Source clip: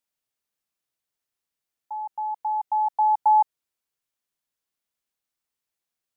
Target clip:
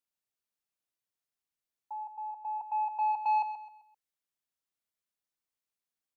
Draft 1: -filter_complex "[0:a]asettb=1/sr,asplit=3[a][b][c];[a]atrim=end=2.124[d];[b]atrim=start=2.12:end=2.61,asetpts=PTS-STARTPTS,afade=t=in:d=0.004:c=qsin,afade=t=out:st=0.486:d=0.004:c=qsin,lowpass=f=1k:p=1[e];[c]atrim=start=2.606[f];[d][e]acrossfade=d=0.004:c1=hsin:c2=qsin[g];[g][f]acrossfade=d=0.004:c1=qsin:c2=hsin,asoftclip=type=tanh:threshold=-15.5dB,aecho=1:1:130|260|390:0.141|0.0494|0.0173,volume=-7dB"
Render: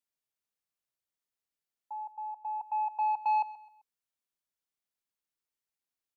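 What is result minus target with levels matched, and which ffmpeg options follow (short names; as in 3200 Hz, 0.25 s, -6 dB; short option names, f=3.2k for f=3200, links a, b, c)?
echo-to-direct -6.5 dB
-filter_complex "[0:a]asettb=1/sr,asplit=3[a][b][c];[a]atrim=end=2.124[d];[b]atrim=start=2.12:end=2.61,asetpts=PTS-STARTPTS,afade=t=in:d=0.004:c=qsin,afade=t=out:st=0.486:d=0.004:c=qsin,lowpass=f=1k:p=1[e];[c]atrim=start=2.606[f];[d][e]acrossfade=d=0.004:c1=hsin:c2=qsin[g];[g][f]acrossfade=d=0.004:c1=qsin:c2=hsin,asoftclip=type=tanh:threshold=-15.5dB,aecho=1:1:130|260|390|520:0.299|0.104|0.0366|0.0128,volume=-7dB"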